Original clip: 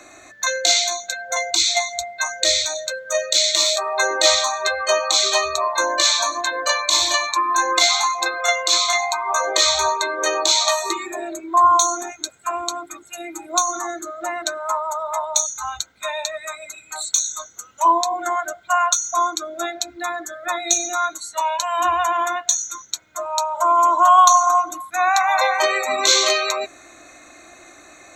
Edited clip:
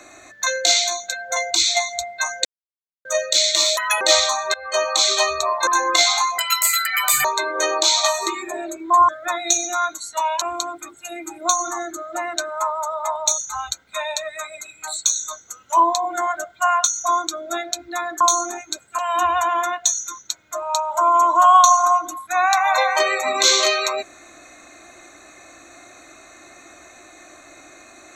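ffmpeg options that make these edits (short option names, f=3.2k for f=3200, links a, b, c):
-filter_complex "[0:a]asplit=13[a][b][c][d][e][f][g][h][i][j][k][l][m];[a]atrim=end=2.45,asetpts=PTS-STARTPTS,afade=t=out:st=2.446:d=0.004:c=hsin[n];[b]atrim=start=2.45:end=3.05,asetpts=PTS-STARTPTS,volume=0[o];[c]atrim=start=3.05:end=3.774,asetpts=PTS-STARTPTS,afade=t=in:d=0.004:c=hsin[p];[d]atrim=start=3.77:end=4.16,asetpts=PTS-STARTPTS,asetrate=71442,aresample=44100[q];[e]atrim=start=4.156:end=4.69,asetpts=PTS-STARTPTS,afade=t=out:st=0.53:d=0.004:c=hsin:silence=0.0891251[r];[f]atrim=start=4.69:end=5.822,asetpts=PTS-STARTPTS,afade=t=in:d=0.44:c=qsin:silence=0.0891251[s];[g]atrim=start=7.498:end=8.214[t];[h]atrim=start=8.21:end=9.88,asetpts=PTS-STARTPTS,asetrate=85113,aresample=44100,atrim=end_sample=38159,asetpts=PTS-STARTPTS[u];[i]atrim=start=9.876:end=11.722[v];[j]atrim=start=20.288:end=21.622[w];[k]atrim=start=12.498:end=20.292[x];[l]atrim=start=11.718:end=12.502[y];[m]atrim=start=21.618[z];[n][o][p]concat=n=3:v=0:a=1[aa];[aa][q]acrossfade=d=0.004:c1=hsin:c2=hsin[ab];[r][s]concat=n=2:v=0:a=1[ac];[ab][ac]acrossfade=d=0.004:c1=hsin:c2=hsin[ad];[ad][t]acrossfade=d=0.004:c1=hsin:c2=hsin[ae];[ae][u]acrossfade=d=0.004:c1=hsin:c2=hsin[af];[af][v]acrossfade=d=0.004:c1=hsin:c2=hsin[ag];[ag][w]acrossfade=d=0.004:c1=hsin:c2=hsin[ah];[ah][x]acrossfade=d=0.004:c1=hsin:c2=hsin[ai];[ai][y]acrossfade=d=0.004:c1=hsin:c2=hsin[aj];[aj][z]acrossfade=d=0.004:c1=hsin:c2=hsin"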